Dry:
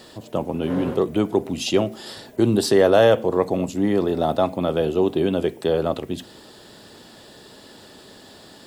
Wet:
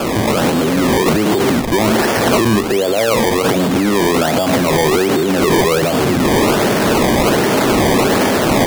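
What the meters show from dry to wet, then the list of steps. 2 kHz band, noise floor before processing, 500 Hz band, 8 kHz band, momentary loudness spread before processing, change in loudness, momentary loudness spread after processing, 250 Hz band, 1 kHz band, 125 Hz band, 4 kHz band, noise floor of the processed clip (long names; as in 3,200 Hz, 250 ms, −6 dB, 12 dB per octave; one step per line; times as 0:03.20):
+15.5 dB, −46 dBFS, +6.5 dB, +16.0 dB, 13 LU, +7.5 dB, 2 LU, +9.5 dB, +12.5 dB, +10.0 dB, +12.5 dB, −17 dBFS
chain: linear delta modulator 64 kbit/s, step −18 dBFS
band-pass filter 110–2,200 Hz
high-frequency loss of the air 250 metres
sample-and-hold swept by an LFO 22×, swing 100% 1.3 Hz
automatic gain control gain up to 8 dB
boost into a limiter +18.5 dB
multiband upward and downward expander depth 40%
level −6.5 dB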